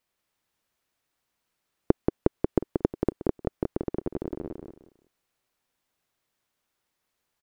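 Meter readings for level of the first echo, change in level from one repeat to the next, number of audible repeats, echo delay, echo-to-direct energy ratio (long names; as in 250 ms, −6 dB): −4.0 dB, −12.0 dB, 3, 181 ms, −3.5 dB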